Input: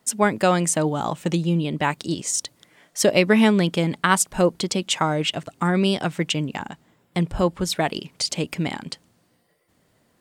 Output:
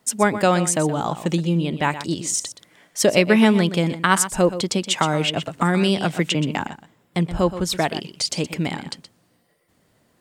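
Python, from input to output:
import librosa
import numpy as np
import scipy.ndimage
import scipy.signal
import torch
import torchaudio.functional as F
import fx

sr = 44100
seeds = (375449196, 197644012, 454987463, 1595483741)

y = x + 10.0 ** (-12.5 / 20.0) * np.pad(x, (int(123 * sr / 1000.0), 0))[:len(x)]
y = fx.band_squash(y, sr, depth_pct=70, at=(4.98, 6.67))
y = y * librosa.db_to_amplitude(1.0)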